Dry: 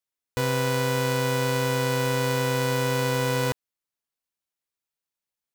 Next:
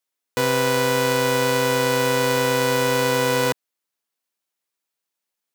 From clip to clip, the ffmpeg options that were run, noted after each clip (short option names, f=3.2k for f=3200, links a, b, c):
-af "highpass=200,volume=6dB"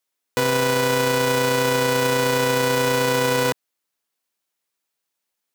-af "alimiter=limit=-11.5dB:level=0:latency=1:release=31,volume=3dB"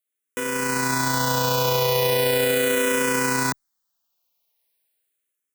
-filter_complex "[0:a]dynaudnorm=f=110:g=11:m=11dB,highshelf=f=10k:g=9,asplit=2[a][b];[b]afreqshift=-0.39[c];[a][c]amix=inputs=2:normalize=1,volume=-6dB"